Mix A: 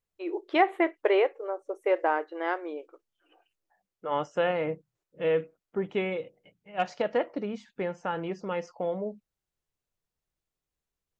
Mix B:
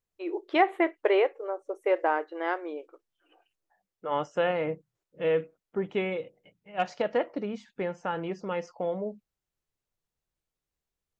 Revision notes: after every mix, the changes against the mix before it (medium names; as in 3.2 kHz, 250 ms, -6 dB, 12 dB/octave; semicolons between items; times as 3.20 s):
no change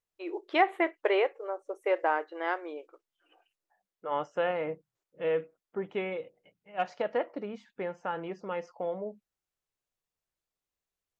second voice: add treble shelf 3.1 kHz -10 dB; master: add bass shelf 330 Hz -9 dB